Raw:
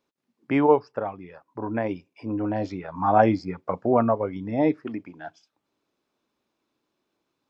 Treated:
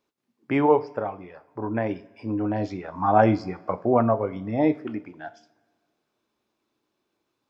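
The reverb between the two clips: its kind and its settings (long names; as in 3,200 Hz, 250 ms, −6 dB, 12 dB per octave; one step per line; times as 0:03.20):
coupled-rooms reverb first 0.35 s, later 1.7 s, from −18 dB, DRR 10.5 dB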